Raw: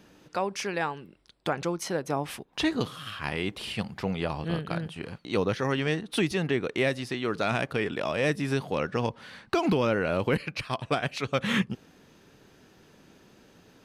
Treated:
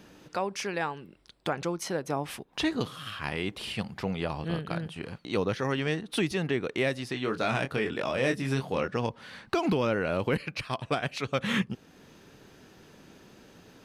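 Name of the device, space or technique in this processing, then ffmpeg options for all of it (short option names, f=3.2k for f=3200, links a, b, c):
parallel compression: -filter_complex "[0:a]asettb=1/sr,asplit=3[a][b][c];[a]atrim=end=7.134[d];[b]atrim=start=7.13:end=8.88,asetpts=PTS-STARTPTS,afade=t=in:d=0.004:c=qsin,afade=t=out:st=1.746:d=0.004:c=qsin,asplit=2[e][f];[f]adelay=23,volume=-6dB[g];[e][g]amix=inputs=2:normalize=0,atrim=end_sample=77175[h];[c]atrim=start=8.876[i];[d][h]acrossfade=d=0.004:c1=hsin:c2=qsin[j];[j][i]acrossfade=d=0.004:c1=qsin:c2=hsin,asplit=2[k][l];[l]acompressor=threshold=-45dB:ratio=6,volume=-1.5dB[m];[k][m]amix=inputs=2:normalize=0,volume=-2.5dB"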